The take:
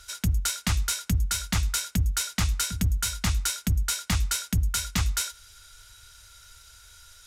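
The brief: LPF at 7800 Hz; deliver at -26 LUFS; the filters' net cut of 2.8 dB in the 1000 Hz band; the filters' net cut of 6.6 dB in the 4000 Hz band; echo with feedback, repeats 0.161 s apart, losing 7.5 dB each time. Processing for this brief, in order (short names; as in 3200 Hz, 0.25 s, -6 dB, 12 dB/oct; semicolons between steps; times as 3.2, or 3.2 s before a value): LPF 7800 Hz; bell 1000 Hz -3.5 dB; bell 4000 Hz -8 dB; feedback echo 0.161 s, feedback 42%, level -7.5 dB; gain +2 dB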